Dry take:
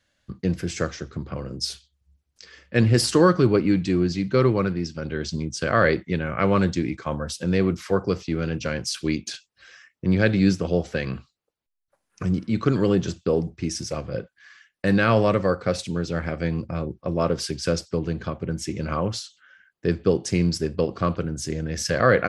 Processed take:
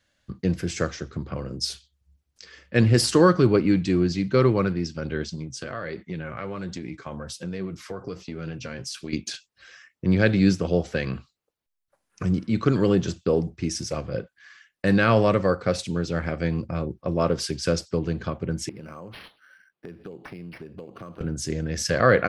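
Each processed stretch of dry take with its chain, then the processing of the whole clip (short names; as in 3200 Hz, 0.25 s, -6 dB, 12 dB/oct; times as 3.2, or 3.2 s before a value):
5.24–9.13 compressor 4:1, threshold -25 dBFS + flange 1.3 Hz, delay 4.3 ms, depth 4.6 ms, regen +57%
18.69–21.21 HPF 130 Hz + compressor 8:1, threshold -36 dBFS + decimation joined by straight lines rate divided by 6×
whole clip: dry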